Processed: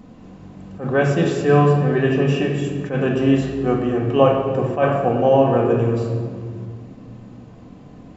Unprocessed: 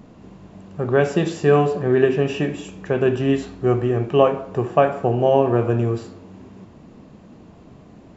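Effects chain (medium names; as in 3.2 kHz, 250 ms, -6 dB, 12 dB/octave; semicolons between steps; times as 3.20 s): simulated room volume 2800 m³, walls mixed, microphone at 2 m; attacks held to a fixed rise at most 160 dB/s; trim -1 dB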